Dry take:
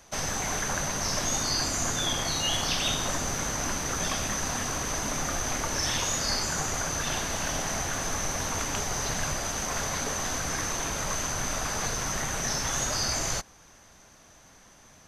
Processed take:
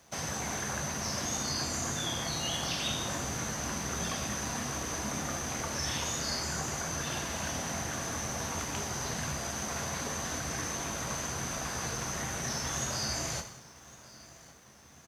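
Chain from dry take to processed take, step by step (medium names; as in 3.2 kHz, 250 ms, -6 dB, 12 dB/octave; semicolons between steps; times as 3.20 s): high-pass 120 Hz 12 dB/octave; bass shelf 170 Hz +9.5 dB; on a send: feedback delay 1108 ms, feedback 45%, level -23 dB; on the sum: gated-style reverb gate 260 ms falling, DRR 5 dB; in parallel at -1 dB: compression, threshold -38 dBFS, peak gain reduction 14.5 dB; on the sum: crossover distortion -55 dBFS; trim -8 dB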